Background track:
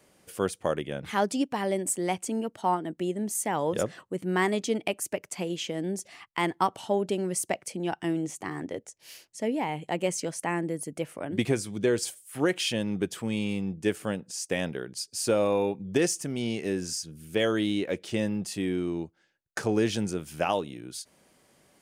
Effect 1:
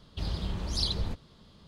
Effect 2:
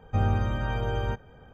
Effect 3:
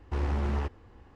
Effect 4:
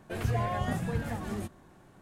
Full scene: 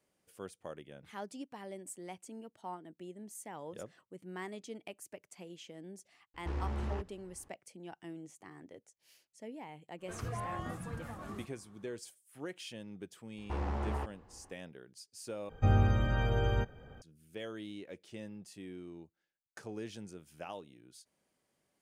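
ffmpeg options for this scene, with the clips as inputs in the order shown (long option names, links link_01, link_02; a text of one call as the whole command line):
ffmpeg -i bed.wav -i cue0.wav -i cue1.wav -i cue2.wav -i cue3.wav -filter_complex "[3:a]asplit=2[link_01][link_02];[0:a]volume=-17.5dB[link_03];[4:a]equalizer=frequency=1200:width_type=o:width=0.41:gain=11[link_04];[link_02]equalizer=frequency=770:width_type=o:width=1.6:gain=7[link_05];[2:a]equalizer=frequency=960:width=3:gain=-6[link_06];[link_03]asplit=2[link_07][link_08];[link_07]atrim=end=15.494[link_09];[link_06]atrim=end=1.53,asetpts=PTS-STARTPTS,volume=-1.5dB[link_10];[link_08]atrim=start=17.016[link_11];[link_01]atrim=end=1.15,asetpts=PTS-STARTPTS,volume=-7.5dB,afade=type=in:duration=0.004:curve=hsin,afade=type=out:start_time=1.146:duration=0.004:curve=hsin,adelay=279594S[link_12];[link_04]atrim=end=2.01,asetpts=PTS-STARTPTS,volume=-11dB,afade=type=in:duration=0.05,afade=type=out:start_time=1.96:duration=0.05,adelay=9980[link_13];[link_05]atrim=end=1.15,asetpts=PTS-STARTPTS,volume=-7.5dB,afade=type=in:duration=0.004:curve=hsin,afade=type=out:start_time=1.146:duration=0.004:curve=hsin,adelay=13380[link_14];[link_09][link_10]acrossfade=duration=0.004:curve1=hsin:curve2=hsin[link_15];[link_15][link_11]acrossfade=duration=0.004:curve1=hsin:curve2=hsin[link_16];[link_16][link_12][link_13][link_14]amix=inputs=4:normalize=0" out.wav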